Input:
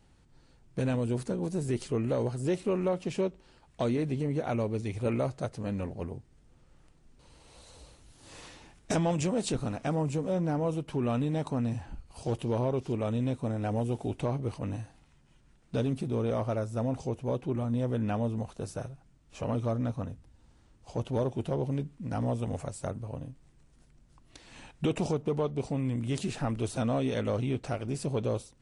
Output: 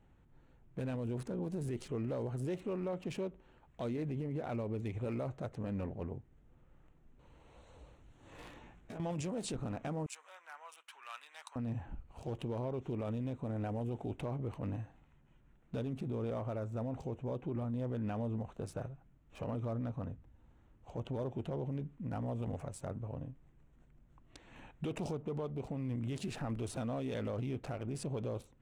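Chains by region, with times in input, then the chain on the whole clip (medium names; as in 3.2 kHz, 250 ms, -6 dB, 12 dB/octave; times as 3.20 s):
8.37–9.00 s: compression 12:1, threshold -41 dBFS + doubling 17 ms -2 dB
10.06–11.56 s: high-pass 1.2 kHz 24 dB/octave + treble shelf 7.6 kHz +9.5 dB
whole clip: local Wiener filter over 9 samples; peak limiter -28 dBFS; trim -3 dB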